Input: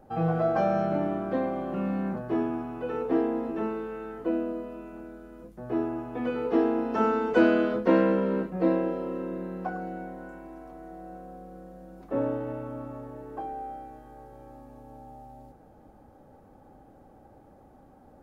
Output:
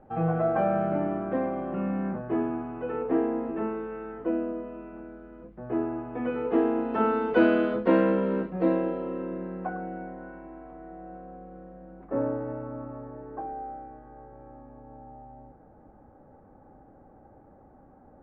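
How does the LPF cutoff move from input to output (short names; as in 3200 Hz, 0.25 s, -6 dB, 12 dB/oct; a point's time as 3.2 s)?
LPF 24 dB/oct
6.18 s 2600 Hz
7.32 s 3800 Hz
8.82 s 3800 Hz
9.68 s 2500 Hz
11.59 s 2500 Hz
12.32 s 1900 Hz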